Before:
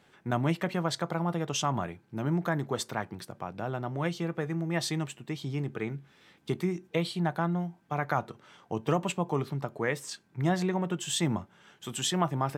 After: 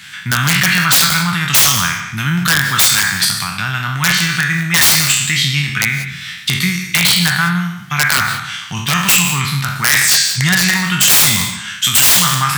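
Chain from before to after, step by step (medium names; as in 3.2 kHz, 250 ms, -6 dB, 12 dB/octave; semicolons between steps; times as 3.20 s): spectral sustain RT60 0.69 s; in parallel at +2 dB: compression 8:1, threshold -37 dBFS, peak gain reduction 17 dB; on the sum: FFT filter 190 Hz 0 dB, 510 Hz -24 dB, 1.6 kHz +10 dB, 4.9 kHz +11 dB; integer overflow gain 14.5 dB; high-pass 71 Hz; peaking EQ 420 Hz -7.5 dB 2 oct; gated-style reverb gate 210 ms rising, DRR 11.5 dB; loudness maximiser +14 dB; trim -1 dB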